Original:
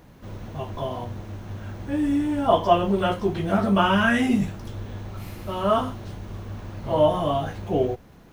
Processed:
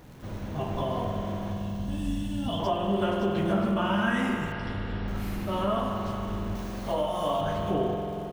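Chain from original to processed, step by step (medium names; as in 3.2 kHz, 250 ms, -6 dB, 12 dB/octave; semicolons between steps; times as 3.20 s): 1.52–2.60 s: time-frequency box 260–2600 Hz -16 dB; 6.55–7.41 s: tone controls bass -12 dB, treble +9 dB; compression, threshold -26 dBFS, peak gain reduction 13.5 dB; crackle 280 per s -46 dBFS; 4.52–5.08 s: brick-wall FIR low-pass 5.7 kHz; delay 469 ms -17.5 dB; spring tank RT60 3.3 s, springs 45 ms, chirp 70 ms, DRR 1 dB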